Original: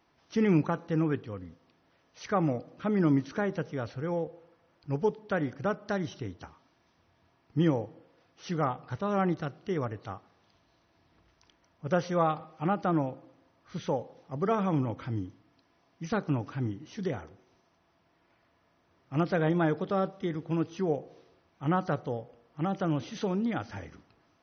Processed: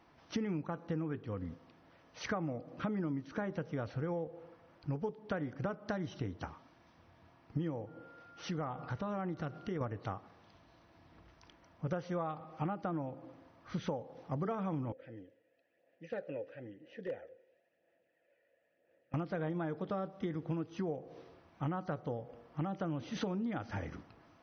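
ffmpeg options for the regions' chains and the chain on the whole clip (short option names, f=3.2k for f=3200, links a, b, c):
-filter_complex "[0:a]asettb=1/sr,asplit=3[a][b][c];[a]atrim=end=7.874[d];[b]atrim=start=7.87:end=9.81,asetpts=PTS-STARTPTS,afade=t=in:d=0.004:c=qsin,afade=t=out:st=1.936:d=0.004:c=qsin,aeval=exprs='val(0)+0.001*sin(2*PI*1400*n/s)':c=same,acompressor=threshold=-43dB:ratio=2:attack=3.2:release=140:knee=1:detection=peak[e];[c]atrim=start=9.806[f];[d][e]acrossfade=d=0.004:c1=hsin:c2=qsin[g];[g][f]acrossfade=d=0.004:c1=qsin:c2=hsin,asettb=1/sr,asplit=3[h][i][j];[h]atrim=end=14.924[k];[i]atrim=start=14.92:end=19.14,asetpts=PTS-STARTPTS,afade=t=in:d=0.004:c=qsin,afade=t=out:st=4.216:d=0.004:c=qsin,aphaser=in_gain=1:out_gain=1:delay=2.1:decay=0.37:speed=1:type=sinusoidal,asplit=3[l][m][n];[l]bandpass=f=530:t=q:w=8,volume=0dB[o];[m]bandpass=f=1.84k:t=q:w=8,volume=-6dB[p];[n]bandpass=f=2.48k:t=q:w=8,volume=-9dB[q];[o][p][q]amix=inputs=3:normalize=0,asoftclip=type=hard:threshold=-35.5dB[r];[j]atrim=start=19.136[s];[k][r]acrossfade=d=0.004:c1=hsin:c2=qsin[t];[t][s]acrossfade=d=0.004:c1=qsin:c2=hsin,highshelf=f=3.5k:g=-9,bandreject=f=400:w=12,acompressor=threshold=-39dB:ratio=12,volume=5.5dB"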